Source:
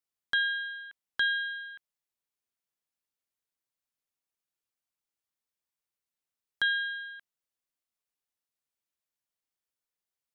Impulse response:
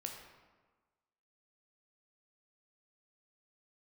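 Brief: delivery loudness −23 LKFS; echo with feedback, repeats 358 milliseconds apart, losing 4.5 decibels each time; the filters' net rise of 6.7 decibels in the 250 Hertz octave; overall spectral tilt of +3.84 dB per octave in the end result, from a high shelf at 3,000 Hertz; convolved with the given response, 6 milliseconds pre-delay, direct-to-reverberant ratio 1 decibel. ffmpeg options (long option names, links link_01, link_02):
-filter_complex "[0:a]equalizer=frequency=250:width_type=o:gain=8.5,highshelf=frequency=3000:gain=-9,aecho=1:1:358|716|1074|1432|1790|2148|2506|2864|3222:0.596|0.357|0.214|0.129|0.0772|0.0463|0.0278|0.0167|0.01,asplit=2[link_01][link_02];[1:a]atrim=start_sample=2205,adelay=6[link_03];[link_02][link_03]afir=irnorm=-1:irlink=0,volume=1dB[link_04];[link_01][link_04]amix=inputs=2:normalize=0,volume=10dB"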